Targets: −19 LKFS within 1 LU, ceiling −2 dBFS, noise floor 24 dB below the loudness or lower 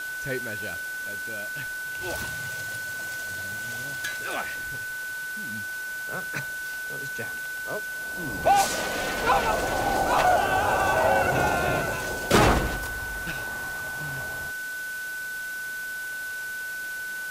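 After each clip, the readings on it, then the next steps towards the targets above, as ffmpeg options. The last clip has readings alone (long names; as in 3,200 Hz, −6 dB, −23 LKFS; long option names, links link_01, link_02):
interfering tone 1,500 Hz; level of the tone −31 dBFS; background noise floor −34 dBFS; target noise floor −52 dBFS; integrated loudness −27.5 LKFS; sample peak −11.5 dBFS; target loudness −19.0 LKFS
→ -af "bandreject=frequency=1500:width=30"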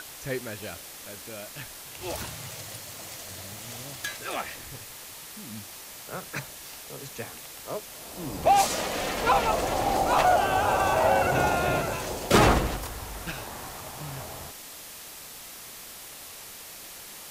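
interfering tone none found; background noise floor −44 dBFS; target noise floor −52 dBFS
→ -af "afftdn=noise_reduction=8:noise_floor=-44"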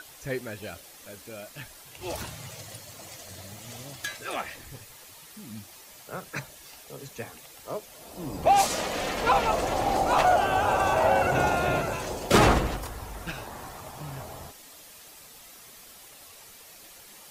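background noise floor −49 dBFS; target noise floor −50 dBFS
→ -af "afftdn=noise_reduction=6:noise_floor=-49"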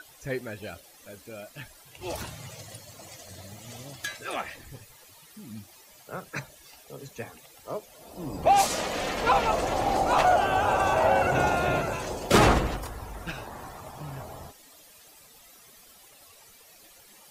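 background noise floor −54 dBFS; integrated loudness −26.0 LKFS; sample peak −11.5 dBFS; target loudness −19.0 LKFS
→ -af "volume=7dB"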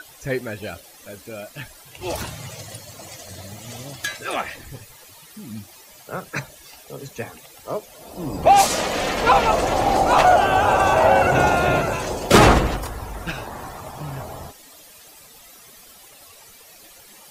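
integrated loudness −19.0 LKFS; sample peak −4.5 dBFS; background noise floor −47 dBFS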